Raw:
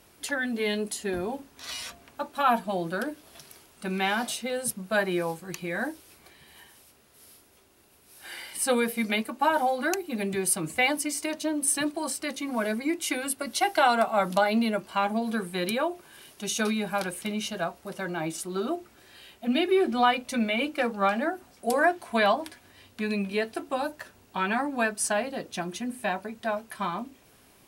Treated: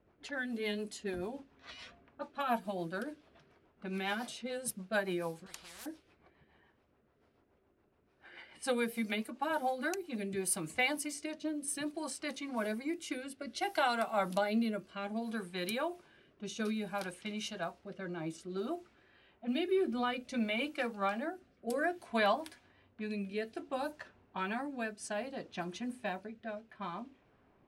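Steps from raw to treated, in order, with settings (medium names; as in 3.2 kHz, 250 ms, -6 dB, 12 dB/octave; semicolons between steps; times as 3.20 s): rotary cabinet horn 7 Hz, later 0.6 Hz, at 9.55 s; level-controlled noise filter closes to 1.3 kHz, open at -27 dBFS; 5.46–5.86 s: spectrum-flattening compressor 10:1; trim -6.5 dB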